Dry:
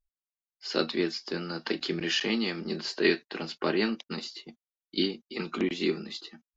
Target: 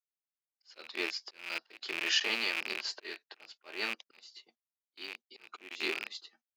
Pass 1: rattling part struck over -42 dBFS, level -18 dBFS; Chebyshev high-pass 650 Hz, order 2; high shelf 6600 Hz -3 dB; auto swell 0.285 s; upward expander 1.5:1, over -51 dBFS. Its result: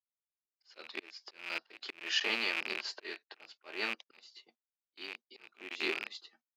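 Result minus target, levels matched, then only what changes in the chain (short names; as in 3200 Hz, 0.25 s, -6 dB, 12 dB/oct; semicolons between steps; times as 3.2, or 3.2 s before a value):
8000 Hz band -4.0 dB
change: high shelf 6600 Hz +6.5 dB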